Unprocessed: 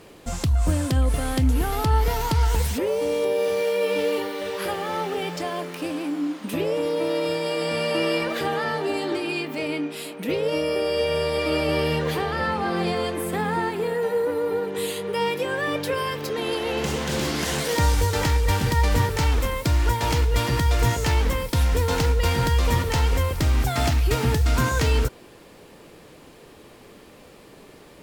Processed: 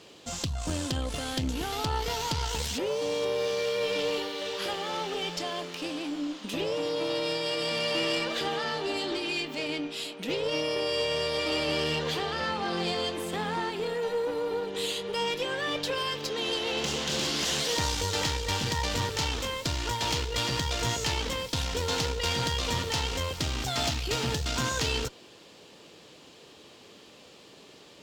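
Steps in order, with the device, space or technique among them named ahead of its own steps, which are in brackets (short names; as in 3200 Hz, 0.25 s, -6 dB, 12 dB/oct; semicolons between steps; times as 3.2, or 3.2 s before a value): HPF 70 Hz; band shelf 4600 Hz +10 dB; tube preamp driven hard (tube stage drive 16 dB, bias 0.5; low shelf 180 Hz -5 dB; high shelf 6400 Hz -6.5 dB); gain -3 dB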